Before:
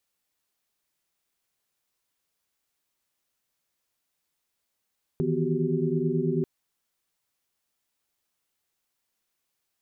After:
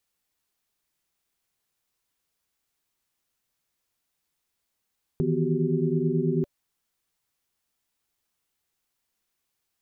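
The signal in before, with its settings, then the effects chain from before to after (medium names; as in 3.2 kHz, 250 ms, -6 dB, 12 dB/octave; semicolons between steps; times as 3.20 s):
chord D#3/E3/B3/F#4/G4 sine, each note -29.5 dBFS 1.24 s
bass shelf 130 Hz +5 dB; band-stop 580 Hz, Q 15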